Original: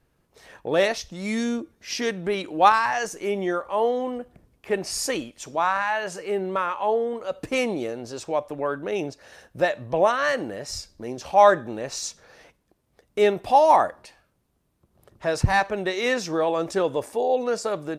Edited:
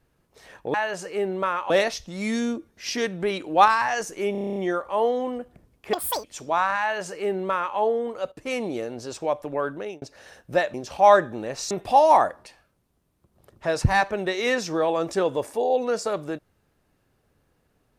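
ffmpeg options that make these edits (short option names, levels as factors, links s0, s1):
-filter_complex "[0:a]asplit=17[s0][s1][s2][s3][s4][s5][s6][s7][s8][s9][s10][s11][s12][s13][s14][s15][s16];[s0]atrim=end=0.742[s17];[s1]atrim=start=5.868:end=6.832[s18];[s2]atrim=start=0.738:end=3.392[s19];[s3]atrim=start=3.358:end=3.392[s20];[s4]atrim=start=3.358:end=3.392[s21];[s5]atrim=start=3.358:end=3.392[s22];[s6]atrim=start=3.358:end=3.392[s23];[s7]atrim=start=3.358:end=3.392[s24];[s8]atrim=start=3.358:end=3.392[s25];[s9]atrim=start=3.358:end=3.392[s26];[s10]atrim=start=3.358:end=4.734[s27];[s11]atrim=start=4.73:end=5.3,asetpts=PTS-STARTPTS,asetrate=81585,aresample=44100[s28];[s12]atrim=start=5.296:end=7.38,asetpts=PTS-STARTPTS,afade=t=out:st=2.08:d=0.004:c=hsin:silence=0.188365[s29];[s13]atrim=start=7.38:end=9.08,asetpts=PTS-STARTPTS,afade=t=in:d=0.64:c=qsin:silence=0.188365,afade=t=out:st=1.39:d=0.31[s30];[s14]atrim=start=9.08:end=9.802,asetpts=PTS-STARTPTS,afade=t=in:d=0.004:c=hsin[s31];[s15]atrim=start=11.078:end=12.052[s32];[s16]atrim=start=13.298[s33];[s17][s18]acrossfade=d=0.004:c1=hsin:c2=hsin[s34];[s34][s19]acrossfade=d=0.004:c1=hsin:c2=hsin[s35];[s35][s20]acrossfade=d=0.004:c1=hsin:c2=hsin[s36];[s36][s21]acrossfade=d=0.004:c1=hsin:c2=hsin[s37];[s37][s22]acrossfade=d=0.004:c1=hsin:c2=hsin[s38];[s38][s23]acrossfade=d=0.004:c1=hsin:c2=hsin[s39];[s39][s24]acrossfade=d=0.004:c1=hsin:c2=hsin[s40];[s40][s25]acrossfade=d=0.004:c1=hsin:c2=hsin[s41];[s41][s26]acrossfade=d=0.004:c1=hsin:c2=hsin[s42];[s42][s27]acrossfade=d=0.004:c1=hsin:c2=hsin[s43];[s43][s28]acrossfade=d=0.004:c1=hsin:c2=hsin[s44];[s29][s30][s31]concat=n=3:v=0:a=1[s45];[s44][s45]acrossfade=d=0.004:c1=hsin:c2=hsin[s46];[s46][s32]acrossfade=d=0.004:c1=hsin:c2=hsin[s47];[s47][s33]acrossfade=d=0.004:c1=hsin:c2=hsin"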